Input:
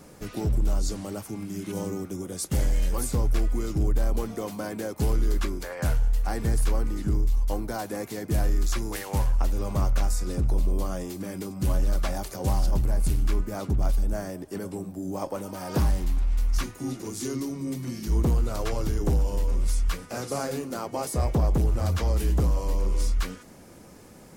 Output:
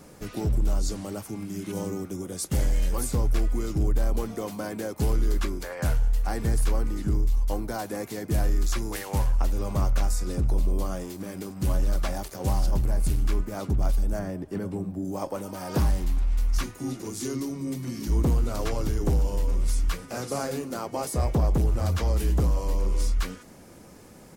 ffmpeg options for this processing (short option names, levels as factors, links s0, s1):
-filter_complex "[0:a]asettb=1/sr,asplit=3[s0][s1][s2];[s0]atrim=end=10.954[s3];[s1]atrim=start=10.95:end=13.57,asetpts=PTS-STARTPTS,afade=t=in:d=0.004:c=qsin,afade=t=out:st=2.616:d=0.004:c=qsin,aeval=exprs='sgn(val(0))*max(abs(val(0))-0.00447,0)':c=same[s4];[s2]atrim=start=13.566[s5];[s3][s4]acrossfade=d=0.004:c1=hsin:c2=qsin[s6];[s6][s5]acrossfade=d=0.004:c1=qsin:c2=hsin,asettb=1/sr,asplit=3[s7][s8][s9];[s7]atrim=end=14.194[s10];[s8]atrim=start=14.19:end=15.05,asetpts=PTS-STARTPTS,afade=t=in:d=0.004:c=qsin,afade=t=out:st=0.856:d=0.004:c=qsin,bass=f=250:g=6,treble=f=4000:g=-9[s11];[s9]atrim=start=15.046[s12];[s10][s11]acrossfade=d=0.004:c1=hsin:c2=qsin[s13];[s13][s12]acrossfade=d=0.004:c1=qsin:c2=hsin,asplit=2[s14][s15];[s15]afade=t=in:st=17.36:d=0.01,afade=t=out:st=18.09:d=0.01,aecho=0:1:590|1180|1770|2360|2950|3540|4130|4720|5310:0.334965|0.217728|0.141523|0.0919899|0.0597934|0.0388657|0.0252627|0.0164208|0.0106735[s16];[s14][s16]amix=inputs=2:normalize=0"